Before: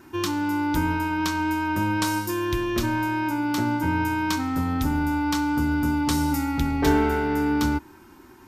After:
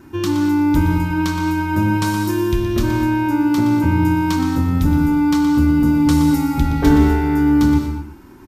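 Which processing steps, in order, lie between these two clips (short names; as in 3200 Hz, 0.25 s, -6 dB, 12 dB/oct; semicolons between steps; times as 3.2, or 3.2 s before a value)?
low shelf 360 Hz +10 dB; on a send: echo 0.12 s -10 dB; on the sum: non-linear reverb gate 0.26 s flat, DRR 4 dB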